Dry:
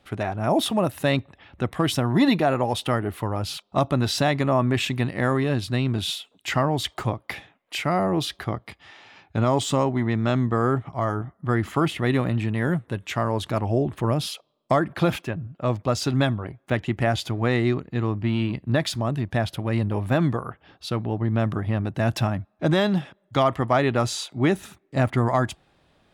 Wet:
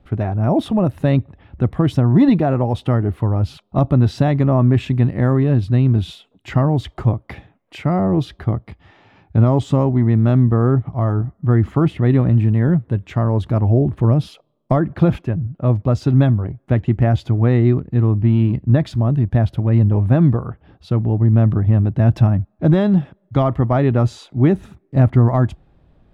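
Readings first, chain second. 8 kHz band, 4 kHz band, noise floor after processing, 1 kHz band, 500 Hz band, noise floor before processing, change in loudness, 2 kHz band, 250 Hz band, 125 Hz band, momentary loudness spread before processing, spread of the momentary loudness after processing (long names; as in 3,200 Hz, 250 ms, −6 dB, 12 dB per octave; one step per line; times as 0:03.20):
below −10 dB, can't be measured, −61 dBFS, −0.5 dB, +3.0 dB, −66 dBFS, +7.5 dB, −4.5 dB, +7.5 dB, +11.0 dB, 8 LU, 7 LU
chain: spectral tilt −4 dB per octave
level −1 dB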